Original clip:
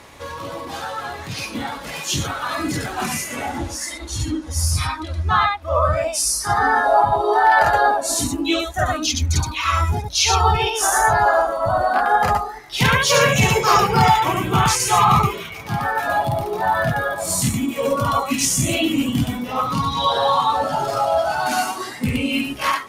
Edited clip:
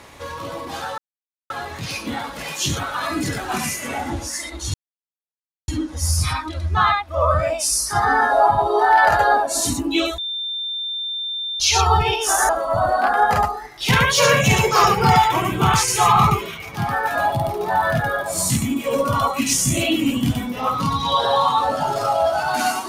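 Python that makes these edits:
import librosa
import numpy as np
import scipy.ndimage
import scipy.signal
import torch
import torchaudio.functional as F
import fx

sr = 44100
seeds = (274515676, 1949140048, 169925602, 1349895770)

y = fx.edit(x, sr, fx.insert_silence(at_s=0.98, length_s=0.52),
    fx.insert_silence(at_s=4.22, length_s=0.94),
    fx.bleep(start_s=8.72, length_s=1.42, hz=3580.0, db=-23.5),
    fx.cut(start_s=11.03, length_s=0.38), tone=tone)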